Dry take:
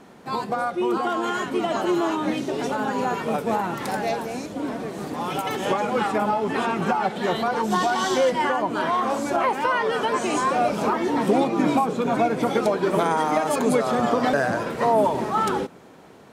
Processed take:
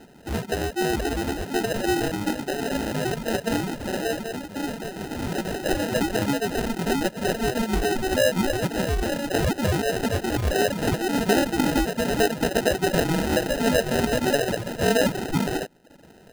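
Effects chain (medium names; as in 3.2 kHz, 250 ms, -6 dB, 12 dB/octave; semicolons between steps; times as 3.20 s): sample-and-hold 39×; reverb removal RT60 0.58 s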